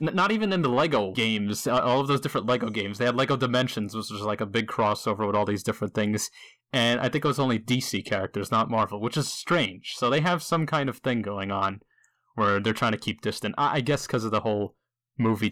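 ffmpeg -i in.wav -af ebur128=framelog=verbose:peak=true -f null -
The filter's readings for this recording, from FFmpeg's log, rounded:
Integrated loudness:
  I:         -25.9 LUFS
  Threshold: -36.1 LUFS
Loudness range:
  LRA:         2.4 LU
  Threshold: -46.3 LUFS
  LRA low:   -27.2 LUFS
  LRA high:  -24.8 LUFS
True peak:
  Peak:      -15.3 dBFS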